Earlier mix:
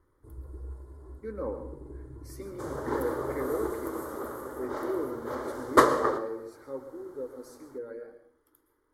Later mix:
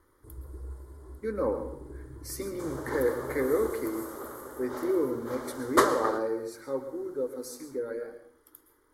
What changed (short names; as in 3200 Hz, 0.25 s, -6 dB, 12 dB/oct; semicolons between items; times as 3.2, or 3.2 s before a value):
speech +5.5 dB; second sound -4.5 dB; master: add high shelf 2500 Hz +8 dB